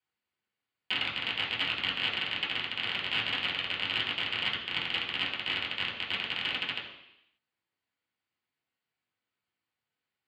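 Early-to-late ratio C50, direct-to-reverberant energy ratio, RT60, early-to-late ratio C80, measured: 5.5 dB, -6.0 dB, 0.85 s, 7.5 dB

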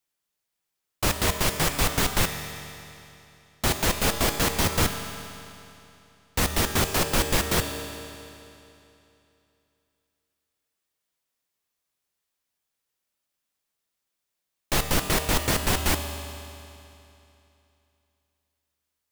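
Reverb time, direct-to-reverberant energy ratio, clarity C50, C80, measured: 2.9 s, 5.5 dB, 6.5 dB, 7.5 dB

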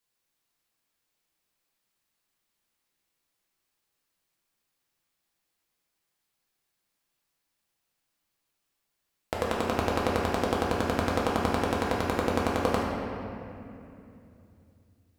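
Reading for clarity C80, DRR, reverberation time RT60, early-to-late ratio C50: 1.0 dB, -4.5 dB, 2.8 s, -1.0 dB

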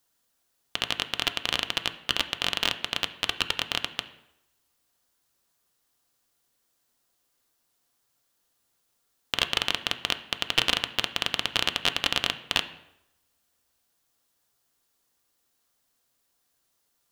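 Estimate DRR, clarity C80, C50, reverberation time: 8.0 dB, 16.5 dB, 14.0 dB, 0.85 s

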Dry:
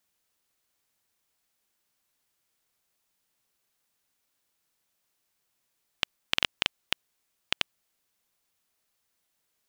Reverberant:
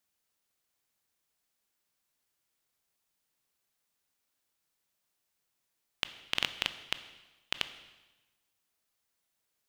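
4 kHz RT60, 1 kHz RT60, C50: 1.1 s, 1.1 s, 13.0 dB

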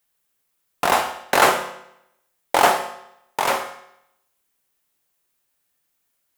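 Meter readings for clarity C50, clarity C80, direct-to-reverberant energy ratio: 11.5 dB, 13.5 dB, 7.0 dB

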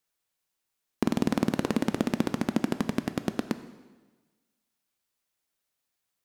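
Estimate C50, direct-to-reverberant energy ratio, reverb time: 12.5 dB, 10.5 dB, 1.3 s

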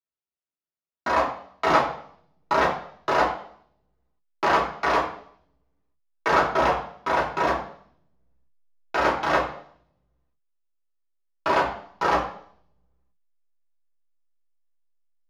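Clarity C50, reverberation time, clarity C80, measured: 6.5 dB, 0.60 s, 10.0 dB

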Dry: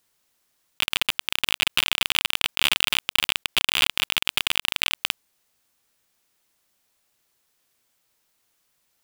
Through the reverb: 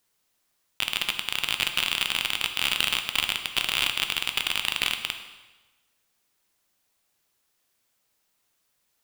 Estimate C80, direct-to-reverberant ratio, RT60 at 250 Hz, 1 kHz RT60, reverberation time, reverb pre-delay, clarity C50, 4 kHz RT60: 10.5 dB, 6.0 dB, 1.1 s, 1.2 s, 1.2 s, 9 ms, 8.5 dB, 1.1 s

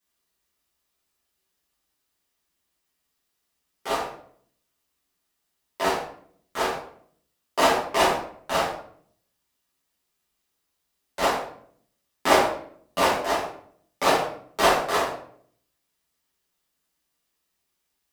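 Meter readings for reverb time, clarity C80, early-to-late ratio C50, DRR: 0.60 s, 8.5 dB, 4.5 dB, -9.0 dB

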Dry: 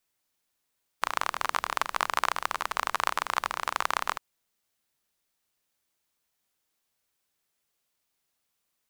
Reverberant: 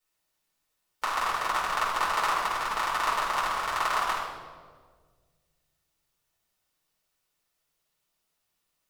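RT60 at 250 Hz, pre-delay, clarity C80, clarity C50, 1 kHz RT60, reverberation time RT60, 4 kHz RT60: 2.2 s, 6 ms, 4.5 dB, 1.5 dB, 1.4 s, 1.7 s, 1.1 s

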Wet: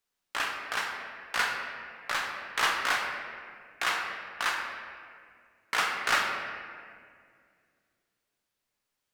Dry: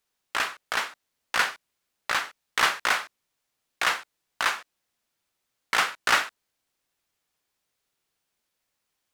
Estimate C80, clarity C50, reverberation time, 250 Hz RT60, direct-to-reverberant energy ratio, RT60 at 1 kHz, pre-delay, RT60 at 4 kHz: 4.5 dB, 3.5 dB, 2.1 s, 2.8 s, 0.5 dB, 1.9 s, 7 ms, 1.3 s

